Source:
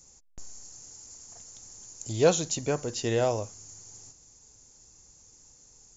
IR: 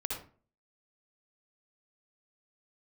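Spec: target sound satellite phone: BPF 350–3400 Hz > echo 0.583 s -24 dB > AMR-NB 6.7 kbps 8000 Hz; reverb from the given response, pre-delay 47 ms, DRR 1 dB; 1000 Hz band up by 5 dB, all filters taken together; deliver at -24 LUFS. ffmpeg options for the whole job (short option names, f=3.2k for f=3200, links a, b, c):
-filter_complex "[0:a]equalizer=f=1k:t=o:g=7.5,asplit=2[a][b];[1:a]atrim=start_sample=2205,adelay=47[c];[b][c]afir=irnorm=-1:irlink=0,volume=-3.5dB[d];[a][d]amix=inputs=2:normalize=0,highpass=350,lowpass=3.4k,aecho=1:1:583:0.0631,volume=2dB" -ar 8000 -c:a libopencore_amrnb -b:a 6700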